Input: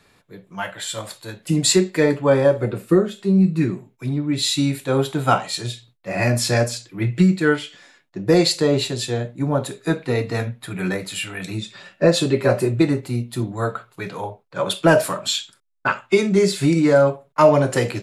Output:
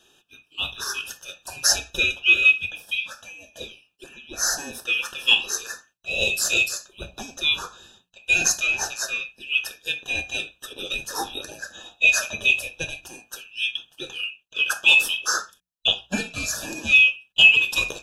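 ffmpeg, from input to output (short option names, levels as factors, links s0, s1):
-af "afftfilt=real='real(if(lt(b,920),b+92*(1-2*mod(floor(b/92),2)),b),0)':imag='imag(if(lt(b,920),b+92*(1-2*mod(floor(b/92),2)),b),0)':win_size=2048:overlap=0.75,asuperstop=centerf=2100:order=20:qfactor=3.2,bandreject=f=60:t=h:w=6,bandreject=f=120:t=h:w=6,bandreject=f=180:t=h:w=6"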